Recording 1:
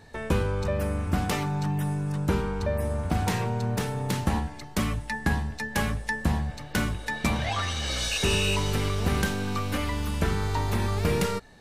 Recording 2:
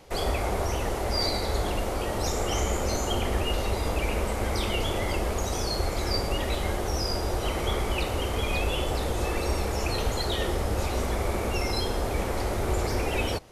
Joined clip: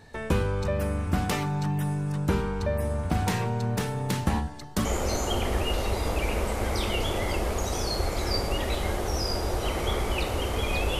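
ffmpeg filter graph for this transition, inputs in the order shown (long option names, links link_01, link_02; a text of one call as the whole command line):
ffmpeg -i cue0.wav -i cue1.wav -filter_complex "[0:a]asettb=1/sr,asplit=3[link_01][link_02][link_03];[link_01]atrim=end=4.414[link_04];[link_02]atrim=start=4.41:end=4.85,asetpts=PTS-STARTPTS,afade=type=in:duration=0.004:curve=qsin,afade=type=out:start_time=0.436:duration=0.004:curve=qsin,equalizer=frequency=2300:width=2.9:gain=-8[link_05];[link_03]atrim=start=4.846[link_06];[link_04][link_05]acrossfade=duration=0.004:curve1=hsin:curve2=qsin[link_07];[link_07][link_06]acrossfade=duration=0.004:curve1=qsin:curve2=hsin,apad=whole_dur=10.99,atrim=end=10.99,atrim=end=4.852[link_08];[1:a]atrim=start=2.648:end=8.79[link_09];[link_08][link_09]acrossfade=duration=0.004:curve1=hsin:curve2=hsin" out.wav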